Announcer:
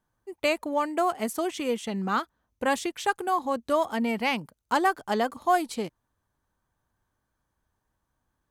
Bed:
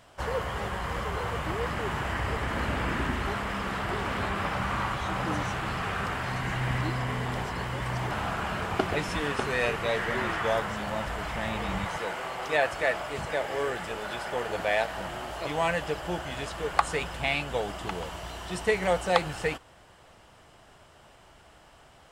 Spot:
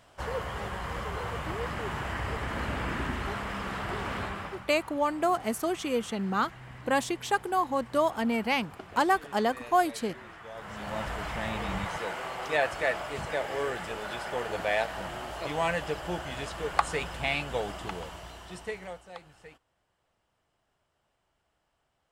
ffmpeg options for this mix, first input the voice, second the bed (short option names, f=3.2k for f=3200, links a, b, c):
-filter_complex "[0:a]adelay=4250,volume=-1dB[a];[1:a]volume=13dB,afade=t=out:st=4.16:d=0.49:silence=0.188365,afade=t=in:st=10.54:d=0.48:silence=0.158489,afade=t=out:st=17.68:d=1.36:silence=0.1[b];[a][b]amix=inputs=2:normalize=0"